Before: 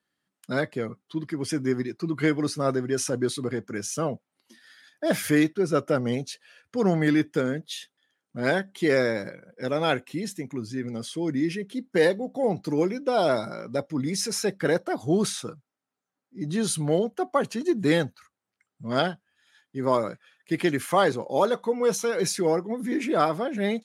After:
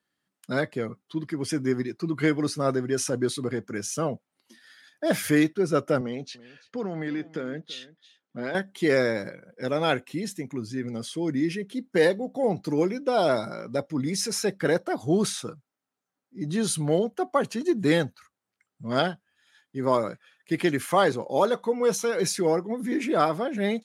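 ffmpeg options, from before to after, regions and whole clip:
ffmpeg -i in.wav -filter_complex "[0:a]asettb=1/sr,asplit=3[link_01][link_02][link_03];[link_01]atrim=end=6.014[link_04];[link_02]atrim=start=6.01:end=8.55,asetpts=PTS-STARTPTS,afade=type=in:duration=0.004:curve=qsin,afade=type=out:start_time=2.536:duration=0.004:curve=qsin,acompressor=threshold=-27dB:ratio=4:attack=3.2:release=140:knee=1:detection=peak,highpass=160,lowpass=4600,aecho=1:1:334:0.112,atrim=end_sample=112014[link_05];[link_03]atrim=start=8.546[link_06];[link_04][link_05]acrossfade=duration=0.004:curve1=hsin:curve2=qsin[link_07];[link_07][link_06]acrossfade=duration=0.004:curve1=qsin:curve2=hsin" out.wav

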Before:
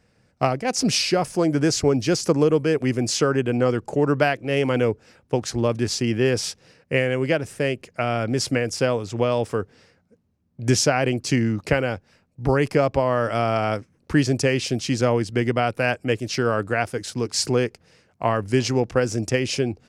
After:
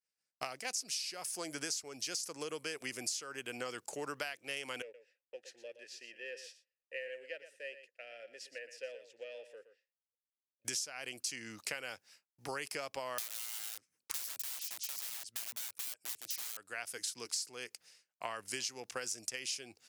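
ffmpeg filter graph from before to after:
ffmpeg -i in.wav -filter_complex "[0:a]asettb=1/sr,asplit=3[link_01][link_02][link_03];[link_01]atrim=end=4.824[link_04];[link_02]atrim=start=4.82:end=10.65,asetpts=PTS-STARTPTS,afade=type=in:duration=0.004:curve=qsin,afade=type=out:start_time=5.826:duration=0.004:curve=qsin,aeval=exprs='if(lt(val(0),0),0.708*val(0),val(0))':channel_layout=same,asplit=3[link_05][link_06][link_07];[link_05]bandpass=frequency=530:width_type=q:width=8,volume=0dB[link_08];[link_06]bandpass=frequency=1840:width_type=q:width=8,volume=-6dB[link_09];[link_07]bandpass=frequency=2480:width_type=q:width=8,volume=-9dB[link_10];[link_08][link_09][link_10]amix=inputs=3:normalize=0,aecho=1:1:119:0.251,atrim=end_sample=257103[link_11];[link_03]atrim=start=10.646[link_12];[link_04][link_11]acrossfade=duration=0.004:curve1=hsin:curve2=qsin[link_13];[link_13][link_12]acrossfade=duration=0.004:curve1=qsin:curve2=hsin,asettb=1/sr,asplit=3[link_14][link_15][link_16];[link_14]atrim=end=13.184[link_17];[link_15]atrim=start=13.18:end=16.57,asetpts=PTS-STARTPTS,afade=type=in:duration=0.004:curve=qsin,afade=type=out:start_time=3.386:duration=0.004:curve=qsin,lowshelf=frequency=65:gain=8,aeval=exprs='(mod(11.9*val(0)+1,2)-1)/11.9':channel_layout=same[link_18];[link_16]atrim=start=16.566[link_19];[link_17][link_18]acrossfade=duration=0.004:curve1=hsin:curve2=qsin[link_20];[link_20][link_19]acrossfade=duration=0.004:curve1=qsin:curve2=hsin,agate=range=-33dB:threshold=-48dB:ratio=3:detection=peak,aderivative,acompressor=threshold=-40dB:ratio=12,volume=4.5dB" out.wav

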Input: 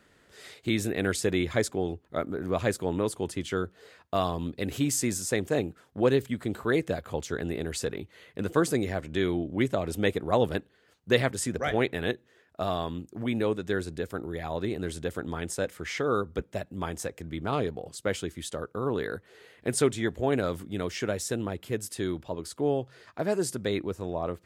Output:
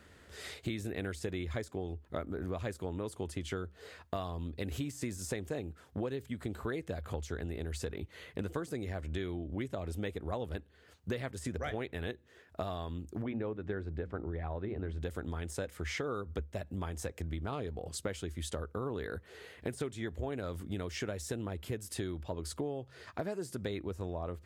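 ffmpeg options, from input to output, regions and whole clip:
ffmpeg -i in.wav -filter_complex "[0:a]asettb=1/sr,asplit=3[link_01][link_02][link_03];[link_01]atrim=end=13.224[link_04];[link_02]atrim=start=13.22:end=15.02,asetpts=PTS-STARTPTS,afade=type=in:duration=0.004:curve=qsin,afade=type=out:start_time=1.796:duration=0.004:curve=qsin,lowpass=1900,bandreject=frequency=60:width_type=h:width=6,bandreject=frequency=120:width_type=h:width=6,bandreject=frequency=180:width_type=h:width=6,bandreject=frequency=240:width_type=h:width=6,bandreject=frequency=300:width_type=h:width=6[link_05];[link_03]atrim=start=15.016[link_06];[link_04][link_05]acrossfade=duration=0.004:curve1=hsin:curve2=qsin[link_07];[link_07][link_06]acrossfade=duration=0.004:curve1=qsin:curve2=hsin,deesser=0.7,equalizer=frequency=73:width=2.8:gain=15,acompressor=threshold=-36dB:ratio=10,volume=2dB" out.wav

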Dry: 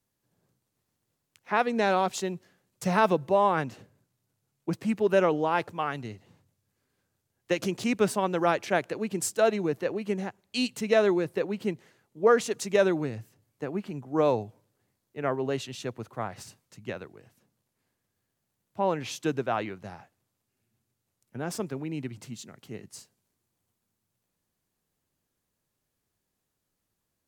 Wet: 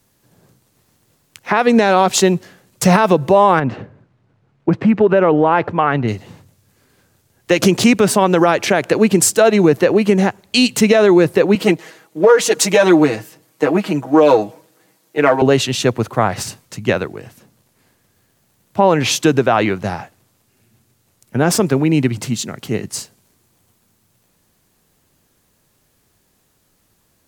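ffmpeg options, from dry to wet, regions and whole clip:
ffmpeg -i in.wav -filter_complex "[0:a]asettb=1/sr,asplit=3[link_01][link_02][link_03];[link_01]atrim=end=3.594[link_04];[link_02]atrim=start=3.59:end=6.08,asetpts=PTS-STARTPTS,afade=type=in:duration=0.004:curve=qsin,afade=type=out:start_time=2.486:duration=0.004:curve=qsin,lowpass=2100,acompressor=threshold=-29dB:ratio=3:attack=3.2:release=140:knee=1:detection=peak[link_05];[link_03]atrim=start=6.076[link_06];[link_04][link_05]acrossfade=duration=0.004:curve1=hsin:curve2=qsin[link_07];[link_07][link_06]acrossfade=duration=0.004:curve1=qsin:curve2=hsin,asettb=1/sr,asplit=3[link_08][link_09][link_10];[link_08]atrim=end=11.554[link_11];[link_09]atrim=start=11.55:end=15.42,asetpts=PTS-STARTPTS,afade=type=in:duration=0.004:curve=qsin,afade=type=out:start_time=3.866:duration=0.004:curve=qsin,aeval=exprs='if(lt(val(0),0),0.708*val(0),val(0))':channel_layout=same,highpass=250,aecho=1:1:6.3:0.93,atrim=end_sample=170667[link_12];[link_10]atrim=start=15.416[link_13];[link_11][link_12]acrossfade=duration=0.004:curve1=hsin:curve2=qsin[link_14];[link_14][link_13]acrossfade=duration=0.004:curve1=qsin:curve2=hsin,acompressor=threshold=-26dB:ratio=2.5,alimiter=level_in=21dB:limit=-1dB:release=50:level=0:latency=1,volume=-1dB" out.wav

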